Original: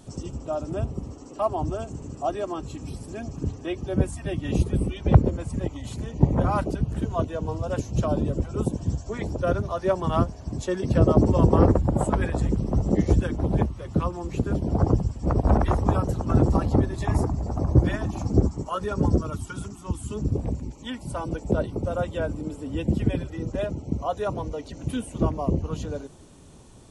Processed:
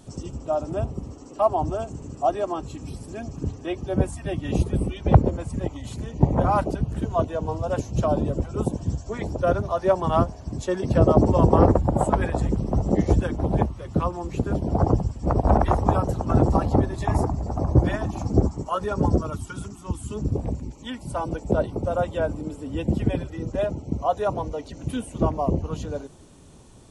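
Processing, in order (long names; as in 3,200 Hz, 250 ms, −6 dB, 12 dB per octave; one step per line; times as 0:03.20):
dynamic equaliser 770 Hz, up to +6 dB, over −38 dBFS, Q 1.3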